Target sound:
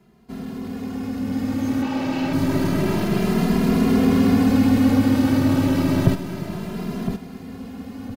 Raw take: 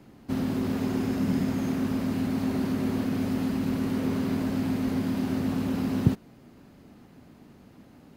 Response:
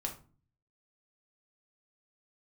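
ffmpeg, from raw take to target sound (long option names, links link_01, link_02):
-filter_complex "[0:a]asettb=1/sr,asplit=3[link_01][link_02][link_03];[link_01]atrim=end=1.824[link_04];[link_02]atrim=start=1.82:end=2.33,asetpts=PTS-STARTPTS,afade=type=in:duration=0.004:curve=qsin,afade=type=out:start_time=0.506:duration=0.004:curve=qsin,highpass=220,equalizer=frequency=250:width_type=q:width=4:gain=-7,equalizer=frequency=810:width_type=q:width=4:gain=8,equalizer=frequency=2700:width_type=q:width=4:gain=7,lowpass=frequency=6300:width=0.5412,lowpass=frequency=6300:width=1.3066[link_05];[link_03]atrim=start=2.326[link_06];[link_04][link_05]acrossfade=duration=0.004:curve1=hsin:curve2=qsin[link_07];[link_07][link_06]acrossfade=duration=0.004:curve1=qsin:curve2=hsin,aeval=exprs='(tanh(10*val(0)+0.2)-tanh(0.2))/10':channel_layout=same,aecho=1:1:1013|2026|3039:0.376|0.105|0.0295,dynaudnorm=framelen=230:gausssize=17:maxgain=15.5dB,asplit=2[link_08][link_09];[link_09]adelay=2.5,afreqshift=0.29[link_10];[link_08][link_10]amix=inputs=2:normalize=1"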